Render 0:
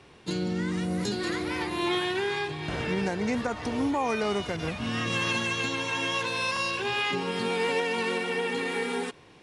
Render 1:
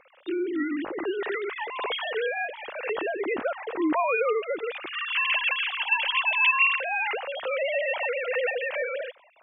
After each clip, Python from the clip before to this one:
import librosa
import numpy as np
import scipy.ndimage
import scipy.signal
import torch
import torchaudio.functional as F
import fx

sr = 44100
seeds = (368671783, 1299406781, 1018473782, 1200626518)

y = fx.sine_speech(x, sr)
y = F.gain(torch.from_numpy(y), 1.5).numpy()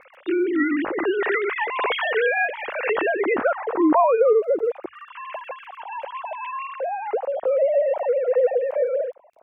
y = fx.filter_sweep_lowpass(x, sr, from_hz=2100.0, to_hz=600.0, start_s=3.09, end_s=4.42, q=1.3)
y = fx.hum_notches(y, sr, base_hz=50, count=2)
y = fx.dmg_crackle(y, sr, seeds[0], per_s=21.0, level_db=-56.0)
y = F.gain(torch.from_numpy(y), 6.5).numpy()